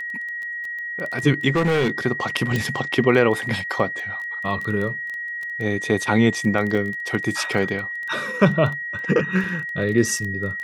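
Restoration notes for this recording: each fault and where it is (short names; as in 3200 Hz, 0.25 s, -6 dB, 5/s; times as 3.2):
crackle 12/s -26 dBFS
tone 1900 Hz -27 dBFS
1.55–1.98 clipped -15.5 dBFS
2.56 pop
6.75 gap 4 ms
9.44 gap 3.1 ms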